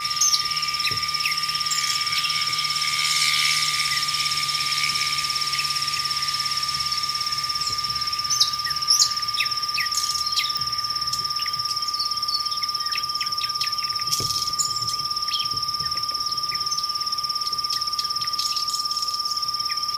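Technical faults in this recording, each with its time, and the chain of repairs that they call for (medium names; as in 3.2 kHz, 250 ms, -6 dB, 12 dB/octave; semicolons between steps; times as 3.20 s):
crackle 34 per s -32 dBFS
whine 1.2 kHz -29 dBFS
10.57 s: pop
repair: de-click; band-stop 1.2 kHz, Q 30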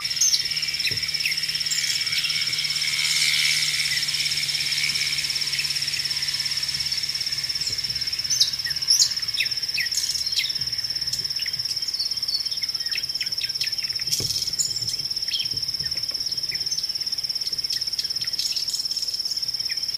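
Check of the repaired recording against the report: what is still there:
nothing left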